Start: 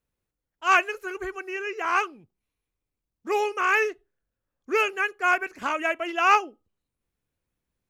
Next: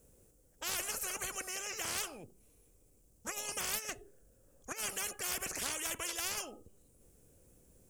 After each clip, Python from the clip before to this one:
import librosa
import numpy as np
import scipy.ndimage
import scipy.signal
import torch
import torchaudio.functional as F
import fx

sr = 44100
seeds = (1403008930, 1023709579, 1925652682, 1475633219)

y = fx.graphic_eq_10(x, sr, hz=(500, 1000, 2000, 4000, 8000), db=(7, -9, -9, -10, 9))
y = fx.over_compress(y, sr, threshold_db=-26.0, ratio=-0.5)
y = fx.spectral_comp(y, sr, ratio=10.0)
y = y * 10.0 ** (-3.5 / 20.0)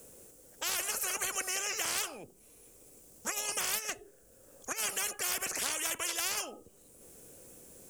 y = fx.rider(x, sr, range_db=10, speed_s=0.5)
y = fx.low_shelf(y, sr, hz=220.0, db=-10.5)
y = fx.band_squash(y, sr, depth_pct=40)
y = y * 10.0 ** (5.5 / 20.0)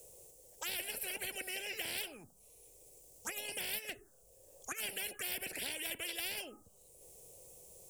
y = fx.env_phaser(x, sr, low_hz=210.0, high_hz=1200.0, full_db=-32.0)
y = y * 10.0 ** (-2.0 / 20.0)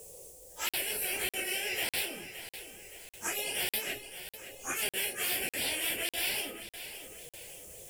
y = fx.phase_scramble(x, sr, seeds[0], window_ms=100)
y = fx.echo_feedback(y, sr, ms=568, feedback_pct=43, wet_db=-12)
y = fx.buffer_crackle(y, sr, first_s=0.69, period_s=0.6, block=2048, kind='zero')
y = y * 10.0 ** (7.5 / 20.0)